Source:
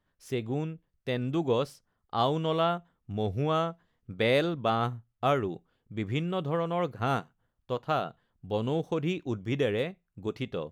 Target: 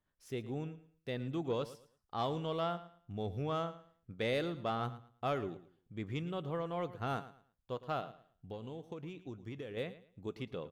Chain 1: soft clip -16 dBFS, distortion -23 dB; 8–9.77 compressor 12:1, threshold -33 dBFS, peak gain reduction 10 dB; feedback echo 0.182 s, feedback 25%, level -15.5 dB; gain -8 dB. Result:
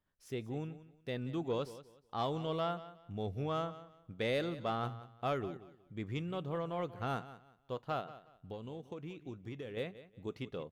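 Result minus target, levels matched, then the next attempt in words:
echo 71 ms late
soft clip -16 dBFS, distortion -23 dB; 8–9.77 compressor 12:1, threshold -33 dBFS, peak gain reduction 10 dB; feedback echo 0.111 s, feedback 25%, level -15.5 dB; gain -8 dB

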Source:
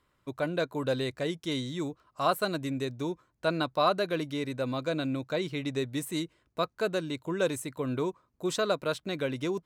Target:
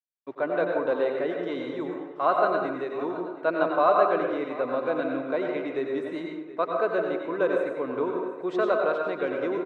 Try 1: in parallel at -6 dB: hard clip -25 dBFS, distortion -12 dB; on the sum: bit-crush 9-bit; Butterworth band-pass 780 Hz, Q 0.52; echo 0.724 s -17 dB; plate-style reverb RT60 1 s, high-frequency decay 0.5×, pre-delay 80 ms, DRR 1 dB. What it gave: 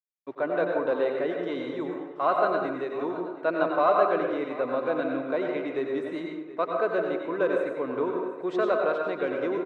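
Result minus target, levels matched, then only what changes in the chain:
hard clip: distortion +27 dB
change: hard clip -15 dBFS, distortion -39 dB

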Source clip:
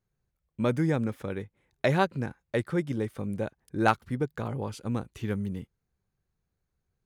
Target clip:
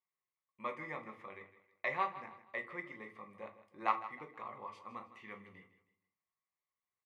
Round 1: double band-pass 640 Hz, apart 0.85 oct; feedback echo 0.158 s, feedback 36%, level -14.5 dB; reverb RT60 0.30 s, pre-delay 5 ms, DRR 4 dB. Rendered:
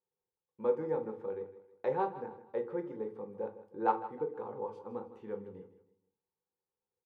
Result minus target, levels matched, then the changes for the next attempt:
2000 Hz band -14.5 dB
change: double band-pass 1500 Hz, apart 0.85 oct

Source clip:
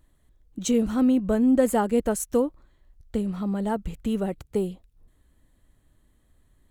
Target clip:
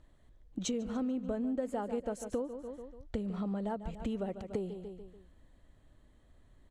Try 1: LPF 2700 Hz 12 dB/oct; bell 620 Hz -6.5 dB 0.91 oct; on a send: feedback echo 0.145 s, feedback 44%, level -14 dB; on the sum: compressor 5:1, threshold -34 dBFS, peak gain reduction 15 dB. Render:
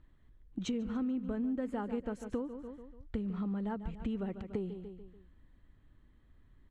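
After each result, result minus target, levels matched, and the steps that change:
8000 Hz band -9.5 dB; 500 Hz band -3.5 dB
change: LPF 6100 Hz 12 dB/oct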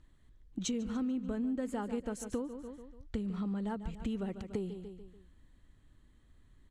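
500 Hz band -3.5 dB
change: bell 620 Hz +4.5 dB 0.91 oct

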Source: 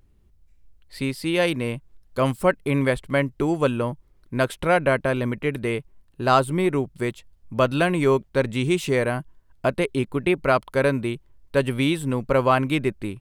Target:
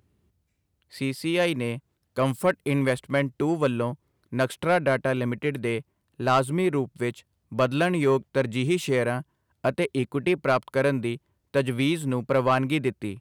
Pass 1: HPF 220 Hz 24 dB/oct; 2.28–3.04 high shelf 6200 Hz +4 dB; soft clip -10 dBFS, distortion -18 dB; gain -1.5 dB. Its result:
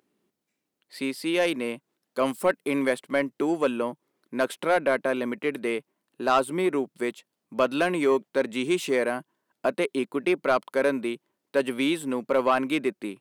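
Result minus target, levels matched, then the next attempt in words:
125 Hz band -14.5 dB
HPF 79 Hz 24 dB/oct; 2.28–3.04 high shelf 6200 Hz +4 dB; soft clip -10 dBFS, distortion -20 dB; gain -1.5 dB

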